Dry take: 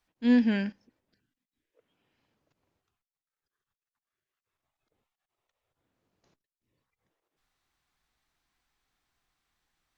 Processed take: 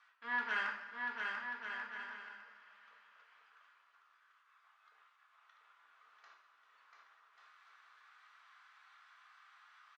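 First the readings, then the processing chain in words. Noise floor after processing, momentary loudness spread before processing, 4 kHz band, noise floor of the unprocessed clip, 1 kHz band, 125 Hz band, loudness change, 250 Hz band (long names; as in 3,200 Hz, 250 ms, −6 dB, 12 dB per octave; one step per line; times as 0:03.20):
−71 dBFS, 11 LU, −4.0 dB, below −85 dBFS, +7.5 dB, below −30 dB, −15.0 dB, −32.0 dB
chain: reversed playback
downward compressor 5 to 1, threshold −36 dBFS, peak gain reduction 16 dB
reversed playback
harmonic generator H 2 −10 dB, 4 −10 dB, 6 −12 dB, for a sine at −28.5 dBFS
four-pole ladder band-pass 1,400 Hz, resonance 60%
tape wow and flutter 16 cents
on a send: bouncing-ball delay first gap 690 ms, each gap 0.65×, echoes 5
on the sum: coupled-rooms reverb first 0.53 s, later 2.7 s, from −16 dB, DRR 0 dB
one half of a high-frequency compander encoder only
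level +17 dB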